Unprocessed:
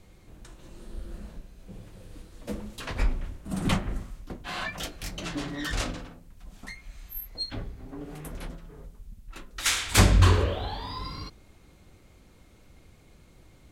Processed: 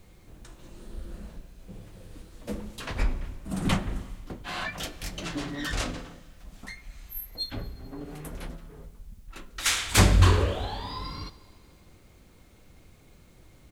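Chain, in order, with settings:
pitch-shifted copies added −3 semitones −16 dB
four-comb reverb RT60 2.1 s, combs from 33 ms, DRR 17.5 dB
bit-depth reduction 12 bits, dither triangular

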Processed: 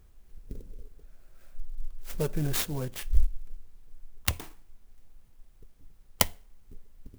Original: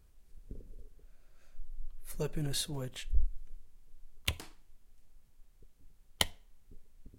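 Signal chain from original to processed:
converter with an unsteady clock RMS 0.063 ms
level +6 dB

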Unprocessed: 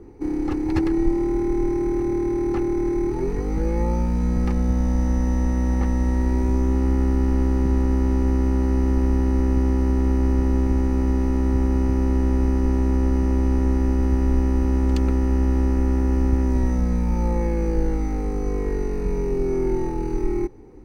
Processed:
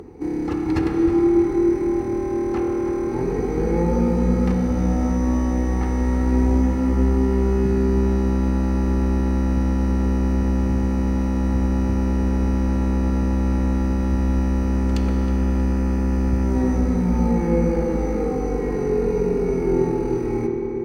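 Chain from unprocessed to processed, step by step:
feedback echo with a low-pass in the loop 317 ms, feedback 65%, low-pass 2,300 Hz, level −9.5 dB
convolution reverb RT60 2.9 s, pre-delay 3 ms, DRR 0.5 dB
upward compression, threshold −35 dBFS
high-pass filter 65 Hz
level +1 dB

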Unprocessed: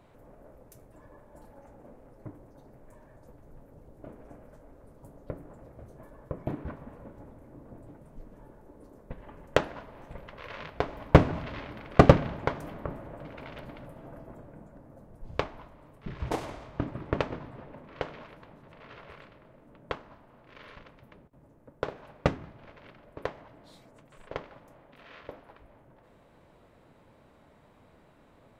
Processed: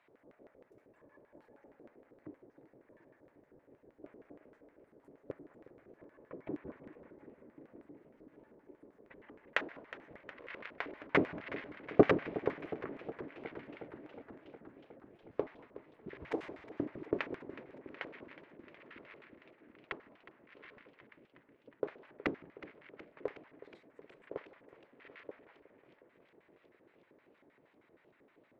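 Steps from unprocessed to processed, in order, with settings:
auto-filter band-pass square 6.4 Hz 370–2,000 Hz
feedback echo with a swinging delay time 366 ms, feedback 74%, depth 90 cents, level −16 dB
level +1 dB

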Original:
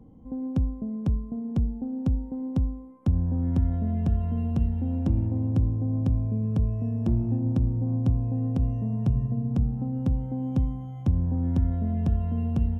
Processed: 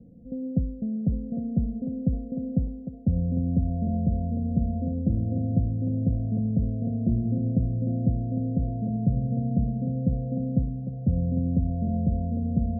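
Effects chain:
Chebyshev low-pass with heavy ripple 720 Hz, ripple 9 dB
feedback echo with a high-pass in the loop 804 ms, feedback 55%, high-pass 420 Hz, level −3 dB
level +4.5 dB

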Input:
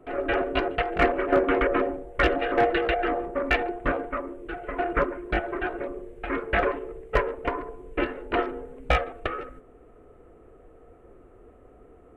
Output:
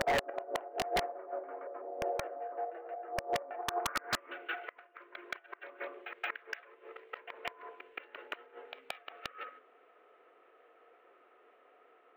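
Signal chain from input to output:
three-way crossover with the lows and the highs turned down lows −23 dB, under 320 Hz, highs −22 dB, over 2,600 Hz
automatic gain control gain up to 3.5 dB
gate with flip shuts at −18 dBFS, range −29 dB
band-pass filter sweep 690 Hz → 3,800 Hz, 0:03.56–0:04.56
wrap-around overflow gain 25.5 dB
backwards echo 174 ms −8.5 dB
wave folding −35.5 dBFS
linearly interpolated sample-rate reduction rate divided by 2×
level +12 dB

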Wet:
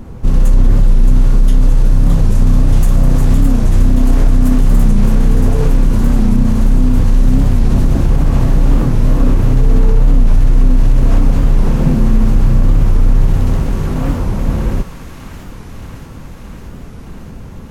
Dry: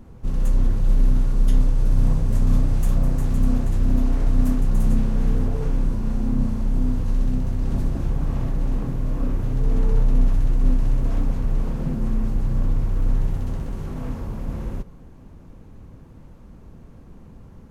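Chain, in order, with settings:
on a send: delay with a high-pass on its return 621 ms, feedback 76%, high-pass 1,400 Hz, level −6 dB
on the sum: boost into a limiter +14.5 dB
wow of a warped record 45 rpm, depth 160 cents
level −1 dB

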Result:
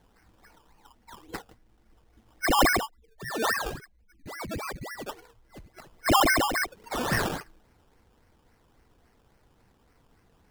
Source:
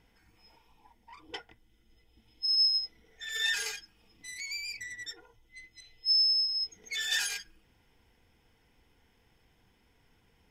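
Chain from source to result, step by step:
0:02.83–0:04.95: expanding power law on the bin magnitudes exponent 3.1
sample-and-hold swept by an LFO 17×, swing 60% 3.6 Hz
level +4 dB

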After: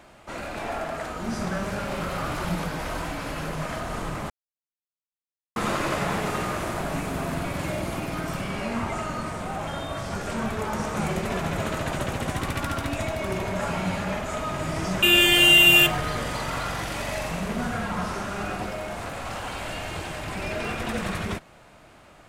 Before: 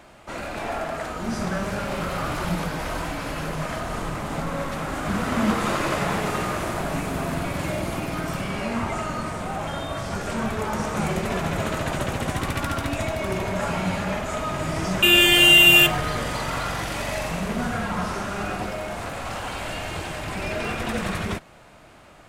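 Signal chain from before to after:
0:04.30–0:05.56: silence
0:07.76–0:08.83: background noise brown −54 dBFS
level −2 dB

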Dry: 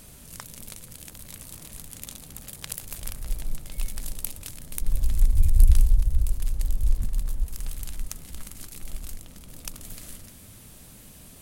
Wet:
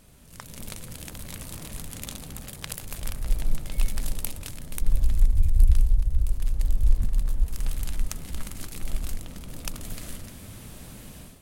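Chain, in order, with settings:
high-shelf EQ 4,700 Hz −7.5 dB
automatic gain control gain up to 12.5 dB
level −5.5 dB

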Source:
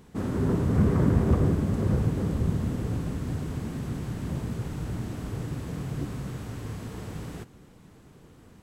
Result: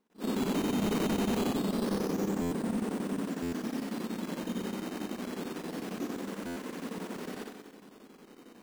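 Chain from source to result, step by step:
flutter between parallel walls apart 10.4 metres, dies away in 1.2 s
noise gate with hold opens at −42 dBFS
linear-phase brick-wall band-pass 180–9,400 Hz
sample-and-hold swept by an LFO 9×, swing 100% 0.26 Hz
hard clipping −26.5 dBFS, distortion −8 dB
square-wave tremolo 11 Hz, depth 60%, duty 80%
buffer that repeats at 0:02.41/0:03.42/0:06.46, samples 512, times 8
level that may rise only so fast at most 290 dB per second

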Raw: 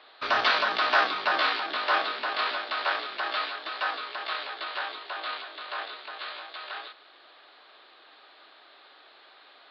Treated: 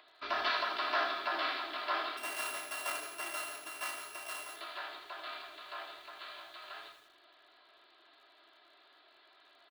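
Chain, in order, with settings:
0:02.17–0:04.56: samples sorted by size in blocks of 16 samples
comb filter 3 ms, depth 62%
upward compression, threshold −48 dBFS
tuned comb filter 170 Hz, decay 0.49 s, harmonics all, mix 50%
feedback echo at a low word length 81 ms, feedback 55%, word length 9 bits, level −7.5 dB
level −6 dB

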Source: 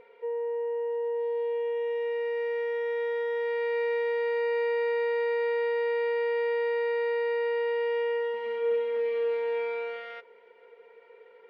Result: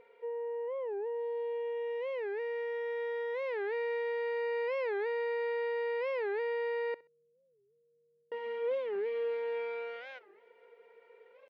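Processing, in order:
0:06.94–0:08.32: inverse Chebyshev low-pass filter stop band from 1,000 Hz, stop band 80 dB
repeating echo 65 ms, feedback 25%, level −20 dB
wow of a warped record 45 rpm, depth 250 cents
level −5.5 dB

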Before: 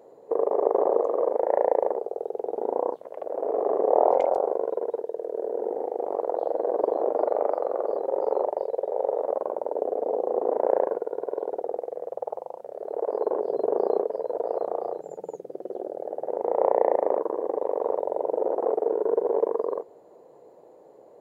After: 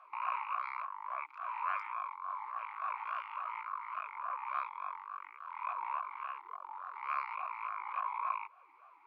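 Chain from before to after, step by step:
wrong playback speed 33 rpm record played at 78 rpm
spectral tilt +3.5 dB per octave
in parallel at +2 dB: downward compressor, threshold −33 dBFS, peak gain reduction 19 dB
on the sum: formant filter swept between two vowels a-u 3.5 Hz
level −4.5 dB

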